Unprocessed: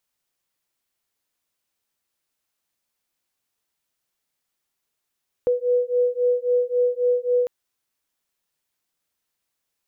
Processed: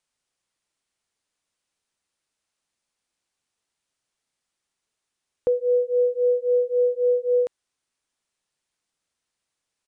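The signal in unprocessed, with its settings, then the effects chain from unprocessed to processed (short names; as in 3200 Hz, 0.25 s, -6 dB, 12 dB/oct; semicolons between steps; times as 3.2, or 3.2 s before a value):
beating tones 490 Hz, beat 3.7 Hz, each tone -21 dBFS 2.00 s
downsampling 22050 Hz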